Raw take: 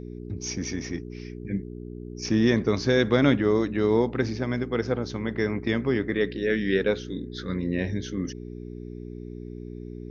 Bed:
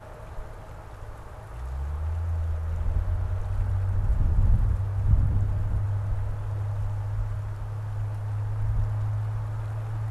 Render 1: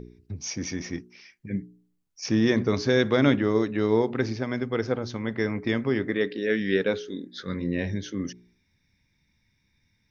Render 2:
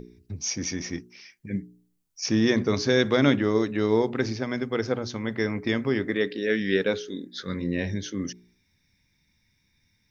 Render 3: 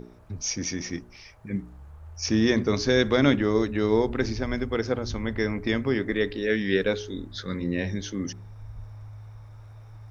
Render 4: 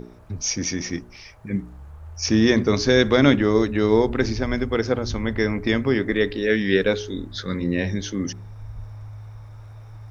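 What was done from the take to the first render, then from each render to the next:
hum removal 60 Hz, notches 7
high-shelf EQ 5,000 Hz +8 dB; mains-hum notches 60/120 Hz
mix in bed −14.5 dB
level +4.5 dB

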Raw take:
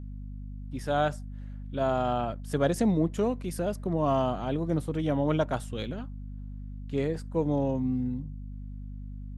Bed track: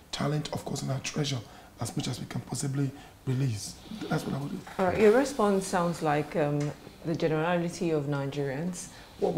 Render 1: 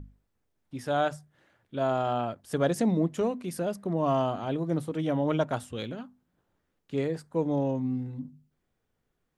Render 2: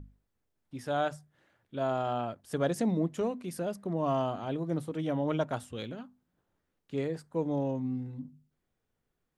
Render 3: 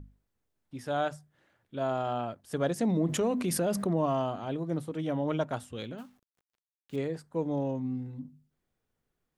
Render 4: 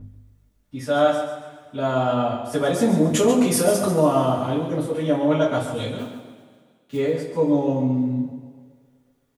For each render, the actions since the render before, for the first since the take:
mains-hum notches 50/100/150/200/250 Hz
level −3.5 dB
0:02.82–0:04.06: envelope flattener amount 70%; 0:05.98–0:06.96: log-companded quantiser 6 bits
repeating echo 138 ms, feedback 34%, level −9.5 dB; coupled-rooms reverb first 0.23 s, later 1.9 s, from −19 dB, DRR −9.5 dB

